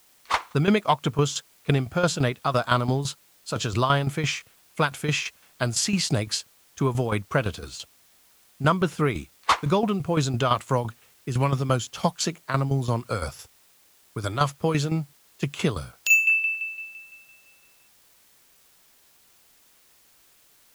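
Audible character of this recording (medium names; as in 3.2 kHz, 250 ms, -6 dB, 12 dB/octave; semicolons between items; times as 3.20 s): tremolo saw down 5.9 Hz, depth 70%; a quantiser's noise floor 10-bit, dither triangular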